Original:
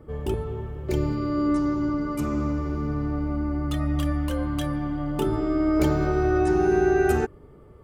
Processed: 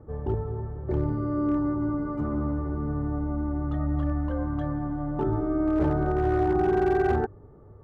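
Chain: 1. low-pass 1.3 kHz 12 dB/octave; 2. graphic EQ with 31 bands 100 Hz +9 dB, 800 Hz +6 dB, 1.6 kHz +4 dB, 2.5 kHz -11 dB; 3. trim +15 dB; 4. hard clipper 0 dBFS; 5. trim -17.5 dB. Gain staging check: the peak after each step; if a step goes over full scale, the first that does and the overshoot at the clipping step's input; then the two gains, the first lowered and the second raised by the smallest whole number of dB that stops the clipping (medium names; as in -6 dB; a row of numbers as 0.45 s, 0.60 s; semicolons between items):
-11.0 dBFS, -9.5 dBFS, +5.5 dBFS, 0.0 dBFS, -17.5 dBFS; step 3, 5.5 dB; step 3 +9 dB, step 5 -11.5 dB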